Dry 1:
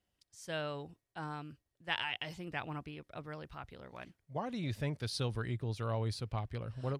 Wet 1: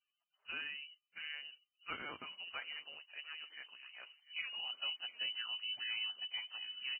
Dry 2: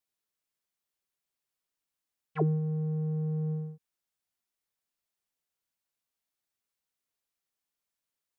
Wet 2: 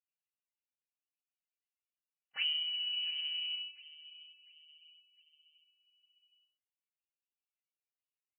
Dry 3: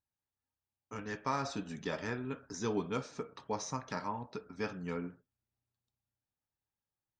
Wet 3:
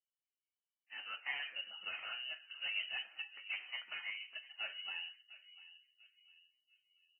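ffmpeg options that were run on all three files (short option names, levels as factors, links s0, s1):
-filter_complex "[0:a]highpass=f=43:p=1,aeval=exprs='clip(val(0),-1,0.0282)':c=same,flanger=delay=5.2:depth=1.6:regen=-47:speed=0.42:shape=sinusoidal,asplit=2[s0][s1];[s1]adelay=698,lowpass=f=940:p=1,volume=0.178,asplit=2[s2][s3];[s3]adelay=698,lowpass=f=940:p=1,volume=0.44,asplit=2[s4][s5];[s5]adelay=698,lowpass=f=940:p=1,volume=0.44,asplit=2[s6][s7];[s7]adelay=698,lowpass=f=940:p=1,volume=0.44[s8];[s0][s2][s4][s6][s8]amix=inputs=5:normalize=0,lowpass=f=2600:t=q:w=0.5098,lowpass=f=2600:t=q:w=0.6013,lowpass=f=2600:t=q:w=0.9,lowpass=f=2600:t=q:w=2.563,afreqshift=-3100,volume=0.841" -ar 16000 -c:a libvorbis -b:a 16k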